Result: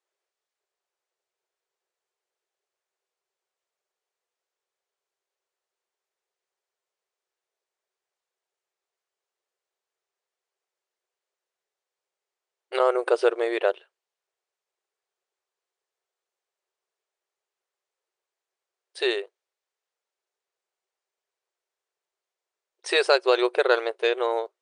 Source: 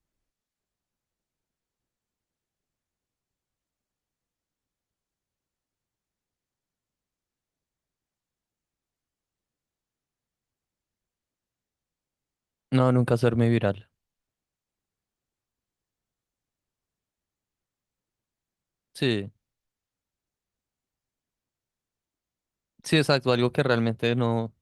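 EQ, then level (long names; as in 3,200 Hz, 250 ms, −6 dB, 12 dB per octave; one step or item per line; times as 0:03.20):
linear-phase brick-wall band-pass 350–10,000 Hz
high-shelf EQ 4,500 Hz −5.5 dB
+4.0 dB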